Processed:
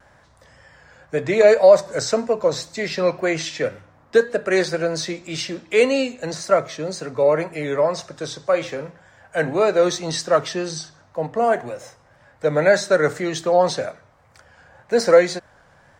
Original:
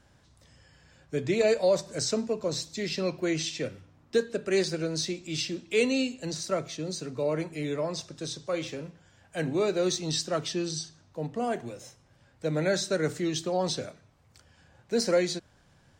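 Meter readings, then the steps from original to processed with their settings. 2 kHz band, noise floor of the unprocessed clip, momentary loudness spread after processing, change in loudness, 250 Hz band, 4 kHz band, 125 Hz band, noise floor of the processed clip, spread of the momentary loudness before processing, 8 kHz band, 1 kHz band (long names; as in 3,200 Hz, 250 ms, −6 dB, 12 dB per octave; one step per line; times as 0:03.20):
+11.0 dB, −62 dBFS, 14 LU, +9.5 dB, +4.0 dB, +3.5 dB, +3.5 dB, −55 dBFS, 10 LU, +3.5 dB, +13.0 dB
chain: flat-topped bell 1,000 Hz +10 dB 2.4 octaves
pitch vibrato 1.9 Hz 53 cents
level +3.5 dB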